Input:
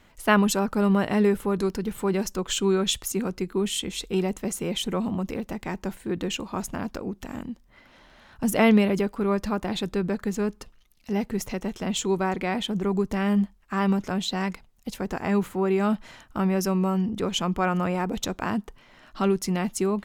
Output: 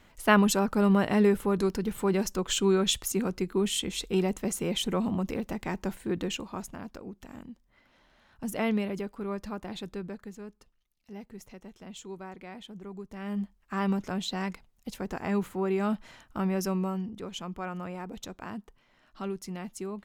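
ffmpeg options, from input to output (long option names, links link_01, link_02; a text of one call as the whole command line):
ffmpeg -i in.wav -af "volume=10.5dB,afade=type=out:start_time=6.07:duration=0.68:silence=0.375837,afade=type=out:start_time=9.9:duration=0.49:silence=0.446684,afade=type=in:start_time=13.11:duration=0.64:silence=0.251189,afade=type=out:start_time=16.73:duration=0.43:silence=0.446684" out.wav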